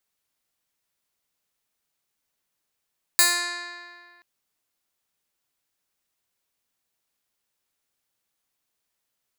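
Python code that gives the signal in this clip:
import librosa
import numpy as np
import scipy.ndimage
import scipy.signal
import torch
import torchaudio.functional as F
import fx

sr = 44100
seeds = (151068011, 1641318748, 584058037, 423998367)

y = fx.pluck(sr, length_s=1.03, note=65, decay_s=1.97, pick=0.12, brightness='bright')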